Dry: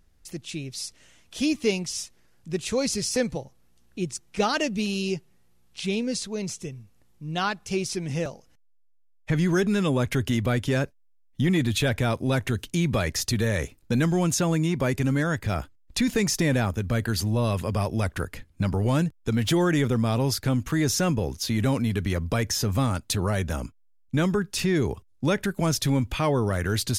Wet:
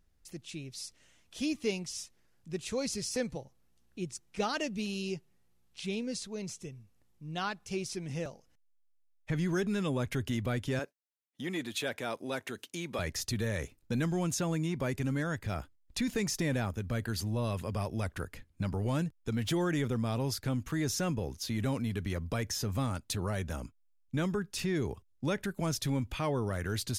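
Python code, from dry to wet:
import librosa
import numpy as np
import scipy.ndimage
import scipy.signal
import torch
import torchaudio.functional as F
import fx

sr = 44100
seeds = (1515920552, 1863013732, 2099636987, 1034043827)

y = fx.highpass(x, sr, hz=310.0, slope=12, at=(10.79, 12.99))
y = y * 10.0 ** (-8.5 / 20.0)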